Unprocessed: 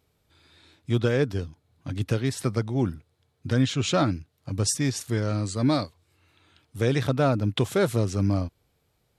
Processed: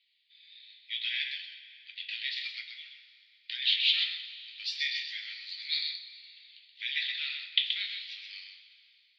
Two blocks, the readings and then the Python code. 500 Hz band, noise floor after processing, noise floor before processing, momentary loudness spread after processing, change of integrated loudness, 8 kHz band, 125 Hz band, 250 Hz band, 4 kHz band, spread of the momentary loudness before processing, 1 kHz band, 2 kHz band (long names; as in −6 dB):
below −40 dB, −66 dBFS, −71 dBFS, 20 LU, −5.5 dB, below −25 dB, below −40 dB, below −40 dB, +7.0 dB, 13 LU, below −30 dB, +1.0 dB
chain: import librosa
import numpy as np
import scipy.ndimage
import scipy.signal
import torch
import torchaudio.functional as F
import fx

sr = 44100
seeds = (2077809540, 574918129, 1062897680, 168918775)

y = x + 10.0 ** (-6.0 / 20.0) * np.pad(x, (int(127 * sr / 1000.0), 0))[:len(x)]
y = y * (1.0 - 0.33 / 2.0 + 0.33 / 2.0 * np.cos(2.0 * np.pi * 0.82 * (np.arange(len(y)) / sr)))
y = scipy.signal.sosfilt(scipy.signal.cheby1(4, 1.0, [1900.0, 4600.0], 'bandpass', fs=sr, output='sos'), y)
y = fx.peak_eq(y, sr, hz=3300.0, db=8.0, octaves=1.1)
y = fx.rev_double_slope(y, sr, seeds[0], early_s=0.28, late_s=2.7, knee_db=-16, drr_db=3.0)